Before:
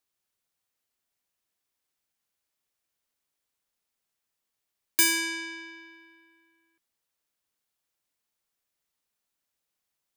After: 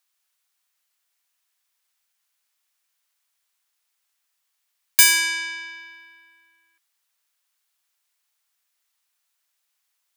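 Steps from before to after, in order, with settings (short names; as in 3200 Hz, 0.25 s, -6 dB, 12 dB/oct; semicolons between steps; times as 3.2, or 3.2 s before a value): HPF 1000 Hz 12 dB/oct; gain +8.5 dB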